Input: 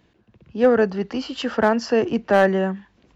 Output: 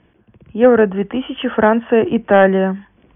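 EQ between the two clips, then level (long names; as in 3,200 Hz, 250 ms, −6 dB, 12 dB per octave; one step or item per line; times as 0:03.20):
linear-phase brick-wall low-pass 3,500 Hz
high-frequency loss of the air 130 metres
+6.0 dB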